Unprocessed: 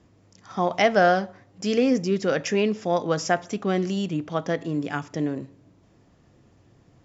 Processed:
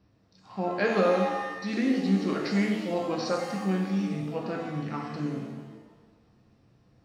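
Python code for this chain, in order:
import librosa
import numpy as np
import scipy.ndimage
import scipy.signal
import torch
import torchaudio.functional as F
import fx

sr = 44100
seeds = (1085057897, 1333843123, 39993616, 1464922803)

y = fx.formant_shift(x, sr, semitones=-4)
y = fx.rev_shimmer(y, sr, seeds[0], rt60_s=1.2, semitones=7, shimmer_db=-8, drr_db=-0.5)
y = F.gain(torch.from_numpy(y), -8.0).numpy()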